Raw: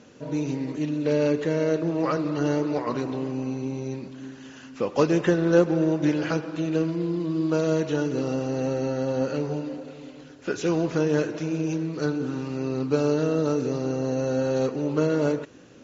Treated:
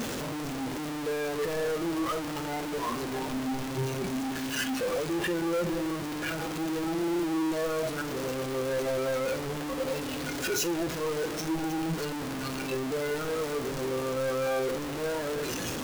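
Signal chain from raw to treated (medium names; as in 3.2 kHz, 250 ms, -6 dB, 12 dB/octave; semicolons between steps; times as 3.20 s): one-bit comparator; spectral noise reduction 9 dB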